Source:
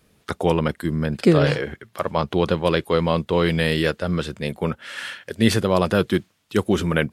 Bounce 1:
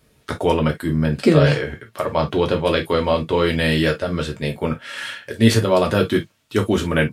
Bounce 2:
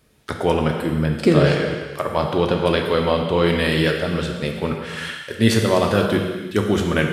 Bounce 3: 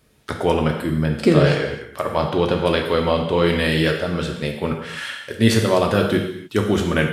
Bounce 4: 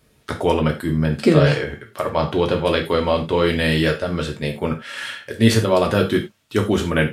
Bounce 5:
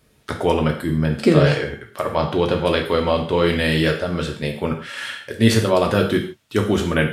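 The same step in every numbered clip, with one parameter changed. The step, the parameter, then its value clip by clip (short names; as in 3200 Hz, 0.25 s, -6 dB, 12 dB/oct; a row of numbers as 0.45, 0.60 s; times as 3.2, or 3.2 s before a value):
non-linear reverb, gate: 80, 530, 320, 120, 180 ms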